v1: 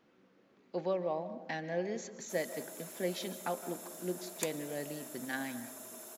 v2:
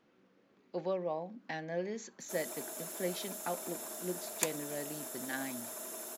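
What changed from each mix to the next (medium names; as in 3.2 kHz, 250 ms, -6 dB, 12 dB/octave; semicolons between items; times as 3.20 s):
background +5.5 dB; reverb: off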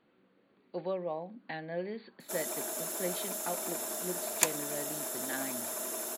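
speech: add brick-wall FIR low-pass 4.7 kHz; background +6.5 dB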